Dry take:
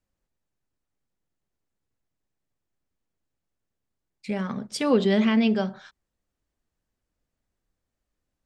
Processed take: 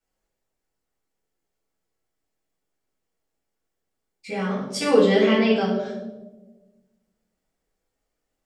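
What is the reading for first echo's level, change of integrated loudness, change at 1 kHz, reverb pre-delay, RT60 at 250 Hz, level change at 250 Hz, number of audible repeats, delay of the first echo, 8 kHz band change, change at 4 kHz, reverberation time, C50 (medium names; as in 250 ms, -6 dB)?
no echo, +3.0 dB, +5.0 dB, 5 ms, 1.7 s, +0.5 dB, no echo, no echo, +4.5 dB, +4.5 dB, 1.2 s, 3.0 dB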